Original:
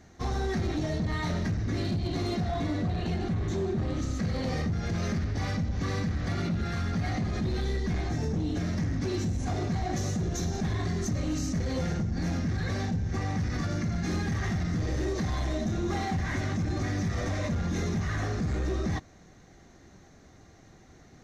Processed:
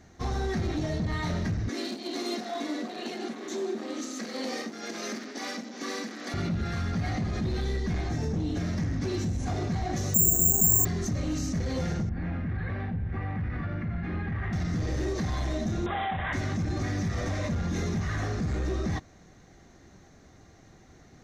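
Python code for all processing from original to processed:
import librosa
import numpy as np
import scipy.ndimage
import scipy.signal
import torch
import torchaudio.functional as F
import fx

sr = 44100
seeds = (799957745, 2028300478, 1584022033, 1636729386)

y = fx.chain(x, sr, fx.cheby1_highpass(hz=230.0, order=5),
    fx.high_shelf(hz=4300.0, db=8.0), at=(1.69, 6.34))
y = fx.chain(y, sr, fx.lowpass(hz=1000.0, slope=12),
    fx.resample_bad(factor=6, down='none', up='zero_stuff'), at=(10.14, 10.85))
y = fx.chain(y, sr, fx.lowpass(hz=2500.0, slope=24),
    fx.peak_eq(hz=370.0, db=-4.5, octaves=2.9), at=(12.09, 14.53))
y = fx.chain(y, sr, fx.low_shelf_res(hz=460.0, db=-9.0, q=1.5),
    fx.resample_bad(factor=6, down='none', up='filtered'),
    fx.env_flatten(amount_pct=70), at=(15.86, 16.33))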